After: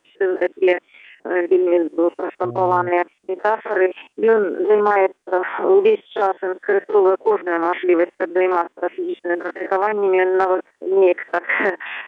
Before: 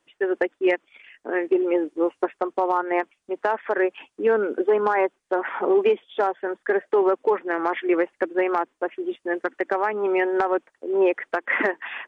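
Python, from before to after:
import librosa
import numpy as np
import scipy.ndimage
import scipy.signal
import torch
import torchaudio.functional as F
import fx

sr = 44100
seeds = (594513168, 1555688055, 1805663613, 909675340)

y = fx.spec_steps(x, sr, hold_ms=50)
y = fx.dmg_buzz(y, sr, base_hz=120.0, harmonics=6, level_db=-38.0, tilt_db=-4, odd_only=False, at=(2.43, 2.88), fade=0.02)
y = y * librosa.db_to_amplitude(6.0)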